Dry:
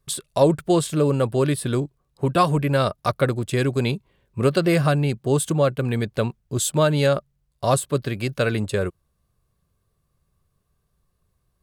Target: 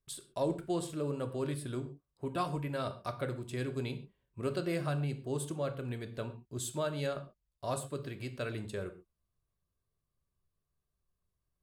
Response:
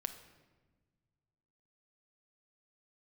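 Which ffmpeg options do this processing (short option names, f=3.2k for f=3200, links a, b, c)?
-filter_complex "[1:a]atrim=start_sample=2205,afade=t=out:st=0.34:d=0.01,atrim=end_sample=15435,asetrate=88200,aresample=44100[a];[0:a][a]afir=irnorm=-1:irlink=0,volume=-8.5dB"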